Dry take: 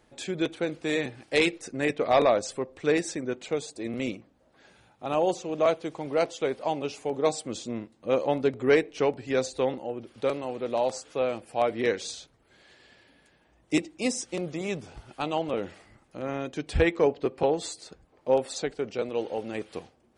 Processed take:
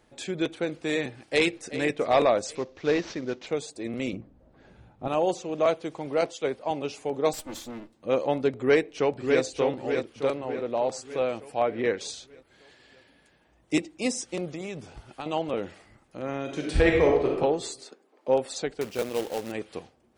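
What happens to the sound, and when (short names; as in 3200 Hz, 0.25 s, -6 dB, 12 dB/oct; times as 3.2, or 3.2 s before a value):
0.99–1.69 echo throw 0.38 s, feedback 45%, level -13 dB
2.55–3.47 CVSD 32 kbps
4.13–5.08 tilt -3.5 dB/oct
6.21–6.71 three-band expander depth 100%
7.33–7.95 minimum comb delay 3.4 ms
8.51–9.42 echo throw 0.6 s, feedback 50%, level -5 dB
10.34–10.92 LPF 2300 Hz 6 dB/oct
11.59–12.01 tone controls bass 0 dB, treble -14 dB
14.45–15.26 compressor, threshold -31 dBFS
16.43–17.33 reverb throw, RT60 0.95 s, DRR -1 dB
17.83–18.28 steep high-pass 230 Hz
18.81–19.52 companded quantiser 4-bit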